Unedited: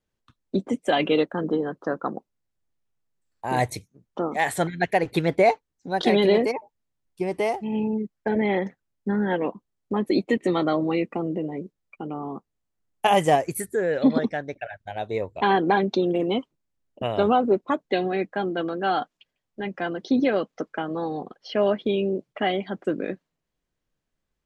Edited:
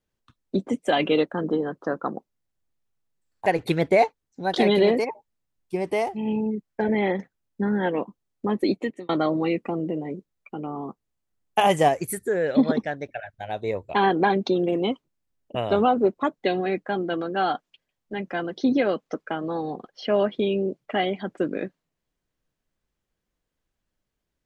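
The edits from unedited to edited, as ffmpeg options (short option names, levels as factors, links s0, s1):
-filter_complex "[0:a]asplit=3[s0][s1][s2];[s0]atrim=end=3.462[s3];[s1]atrim=start=4.928:end=10.56,asetpts=PTS-STARTPTS,afade=t=out:st=5.192:d=0.44[s4];[s2]atrim=start=10.56,asetpts=PTS-STARTPTS,afade=t=in:d=0.004:c=hsin[s5];[s4][s5]concat=n=2:v=0:a=1[s6];[s3][s6]acrossfade=d=0.004:c1=hsin:c2=hsin"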